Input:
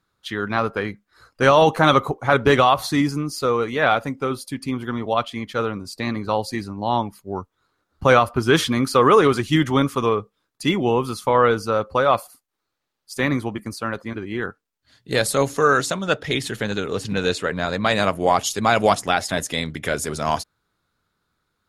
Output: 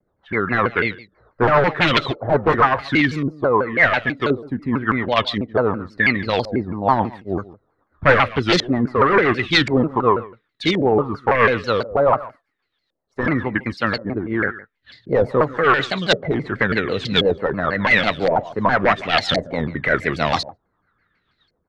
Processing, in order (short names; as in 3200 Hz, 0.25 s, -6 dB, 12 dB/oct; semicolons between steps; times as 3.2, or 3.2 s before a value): small resonant body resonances 1900/3900 Hz, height 17 dB; wavefolder -11 dBFS; on a send: echo 0.143 s -19 dB; on the sum: LFO low-pass saw up 0.93 Hz 550–4500 Hz; rotary speaker horn 7.5 Hz; in parallel at +0.5 dB: vocal rider within 5 dB 0.5 s; on the sum: shaped vibrato saw down 6.1 Hz, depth 250 cents; gain -3 dB